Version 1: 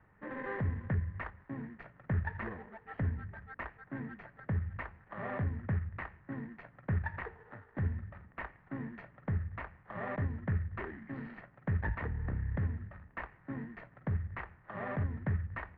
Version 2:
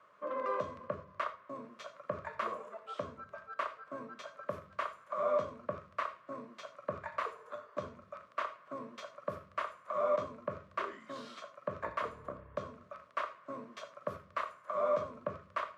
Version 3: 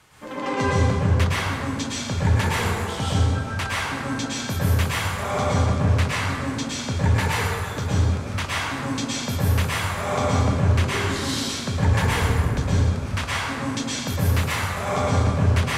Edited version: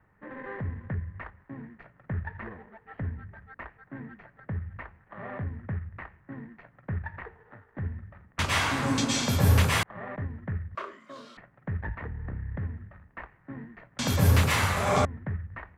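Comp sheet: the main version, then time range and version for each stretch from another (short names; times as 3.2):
1
8.39–9.83 from 3
10.75–11.37 from 2
13.99–15.05 from 3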